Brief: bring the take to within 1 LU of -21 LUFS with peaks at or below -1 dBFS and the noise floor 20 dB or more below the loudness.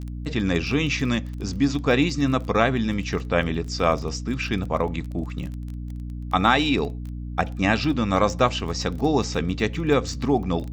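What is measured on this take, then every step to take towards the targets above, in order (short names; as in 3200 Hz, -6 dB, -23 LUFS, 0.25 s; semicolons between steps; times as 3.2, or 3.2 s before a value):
ticks 23/s; hum 60 Hz; harmonics up to 300 Hz; hum level -30 dBFS; loudness -23.5 LUFS; peak -4.0 dBFS; loudness target -21.0 LUFS
-> de-click; notches 60/120/180/240/300 Hz; gain +2.5 dB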